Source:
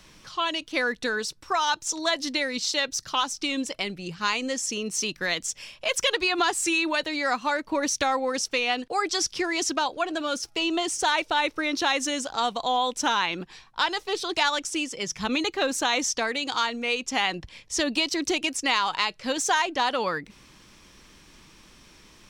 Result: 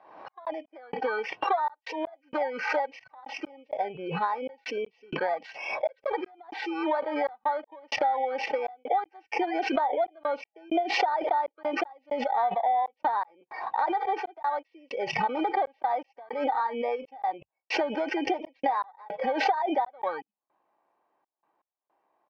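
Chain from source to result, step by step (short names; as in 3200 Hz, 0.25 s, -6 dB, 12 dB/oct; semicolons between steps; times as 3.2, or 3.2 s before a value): FFT order left unsorted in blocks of 16 samples; inverse Chebyshev low-pass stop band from 10000 Hz, stop band 70 dB; spectral noise reduction 23 dB; HPF 400 Hz 12 dB/oct; band shelf 750 Hz +13.5 dB 1.1 oct; comb 2.6 ms, depth 37%; compressor 5:1, threshold -29 dBFS, peak gain reduction 19 dB; step gate "xxx..xx...xxxxx" 161 bpm -60 dB; backwards sustainer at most 58 dB/s; gain +3.5 dB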